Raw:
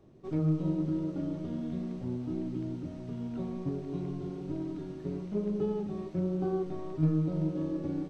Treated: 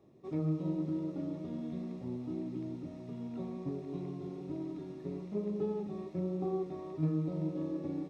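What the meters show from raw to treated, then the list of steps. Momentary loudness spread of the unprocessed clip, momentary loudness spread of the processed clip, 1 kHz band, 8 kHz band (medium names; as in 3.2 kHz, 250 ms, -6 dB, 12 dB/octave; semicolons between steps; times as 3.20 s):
9 LU, 8 LU, -2.5 dB, no reading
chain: comb of notches 1.5 kHz; trim -2.5 dB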